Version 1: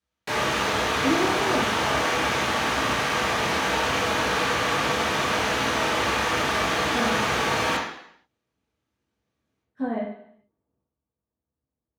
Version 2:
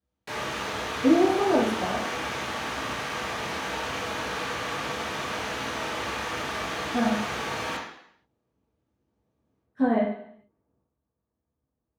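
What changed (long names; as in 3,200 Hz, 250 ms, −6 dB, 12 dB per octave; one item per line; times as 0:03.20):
speech +5.0 dB
background −7.5 dB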